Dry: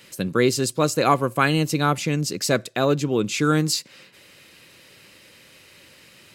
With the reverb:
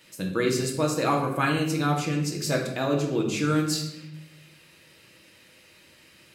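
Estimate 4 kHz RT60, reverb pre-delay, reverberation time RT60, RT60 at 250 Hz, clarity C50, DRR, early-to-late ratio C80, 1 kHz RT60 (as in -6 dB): 0.70 s, 3 ms, 0.85 s, 1.2 s, 5.5 dB, -1.0 dB, 8.5 dB, 0.75 s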